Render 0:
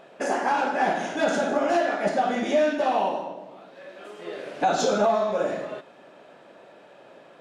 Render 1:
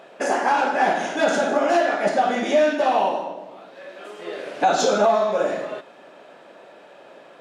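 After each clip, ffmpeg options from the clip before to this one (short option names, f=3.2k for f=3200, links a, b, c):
-af "highpass=f=250:p=1,volume=4.5dB"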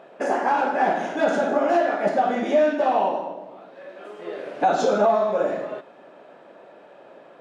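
-af "highshelf=f=2.3k:g=-11.5"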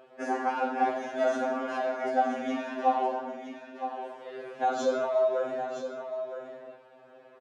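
-af "aecho=1:1:966:0.335,afftfilt=real='re*2.45*eq(mod(b,6),0)':imag='im*2.45*eq(mod(b,6),0)':win_size=2048:overlap=0.75,volume=-5dB"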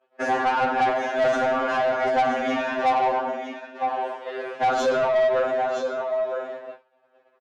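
-filter_complex "[0:a]asplit=2[a][b];[b]highpass=f=720:p=1,volume=20dB,asoftclip=type=tanh:threshold=-13dB[c];[a][c]amix=inputs=2:normalize=0,lowpass=f=3.1k:p=1,volume=-6dB,agate=range=-33dB:threshold=-30dB:ratio=3:detection=peak"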